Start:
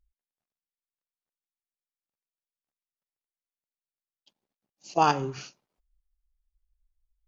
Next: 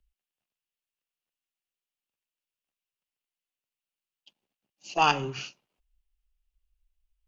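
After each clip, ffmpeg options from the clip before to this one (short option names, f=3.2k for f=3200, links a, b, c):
-filter_complex "[0:a]equalizer=f=2.8k:t=o:w=0.52:g=10.5,acrossover=split=110|740|2200[a][b][c][d];[b]asoftclip=type=tanh:threshold=-27dB[e];[a][e][c][d]amix=inputs=4:normalize=0"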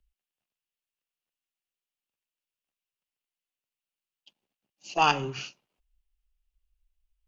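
-af anull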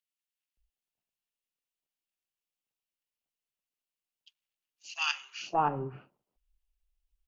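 -filter_complex "[0:a]acrossover=split=1400[a][b];[a]adelay=570[c];[c][b]amix=inputs=2:normalize=0,volume=-2.5dB"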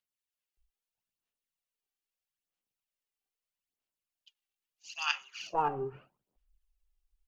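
-af "aphaser=in_gain=1:out_gain=1:delay=2.6:decay=0.55:speed=0.78:type=sinusoidal,volume=-3.5dB"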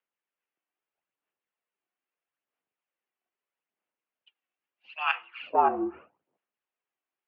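-filter_complex "[0:a]acrossover=split=280 2600:gain=0.141 1 0.178[a][b][c];[a][b][c]amix=inputs=3:normalize=0,highpass=f=160:t=q:w=0.5412,highpass=f=160:t=q:w=1.307,lowpass=f=3.4k:t=q:w=0.5176,lowpass=f=3.4k:t=q:w=0.7071,lowpass=f=3.4k:t=q:w=1.932,afreqshift=-56,volume=8dB"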